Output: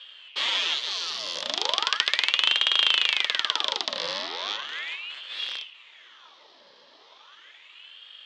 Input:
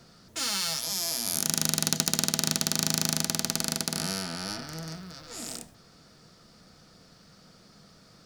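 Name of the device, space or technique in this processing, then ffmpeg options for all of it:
voice changer toy: -af "aeval=exprs='val(0)*sin(2*PI*1700*n/s+1700*0.8/0.37*sin(2*PI*0.37*n/s))':c=same,highpass=560,equalizer=f=740:t=q:w=4:g=-7,equalizer=f=1.5k:t=q:w=4:g=-4,equalizer=f=2.3k:t=q:w=4:g=-3,equalizer=f=3.3k:t=q:w=4:g=9,lowpass=f=4.2k:w=0.5412,lowpass=f=4.2k:w=1.3066,volume=8dB"

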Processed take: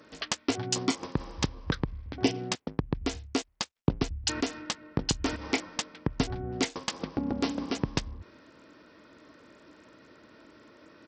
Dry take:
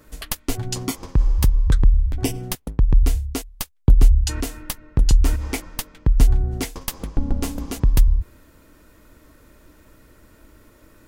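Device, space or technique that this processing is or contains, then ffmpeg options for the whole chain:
Bluetooth headset: -af "highpass=200,aresample=16000,aresample=44100" -ar 44100 -c:a sbc -b:a 64k

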